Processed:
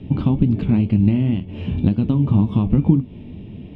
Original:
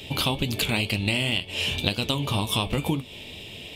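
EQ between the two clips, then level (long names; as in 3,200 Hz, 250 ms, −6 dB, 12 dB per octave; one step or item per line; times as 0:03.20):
low-pass filter 1,100 Hz 12 dB per octave
parametric band 190 Hz +3.5 dB 0.33 octaves
low shelf with overshoot 370 Hz +11 dB, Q 1.5
−1.0 dB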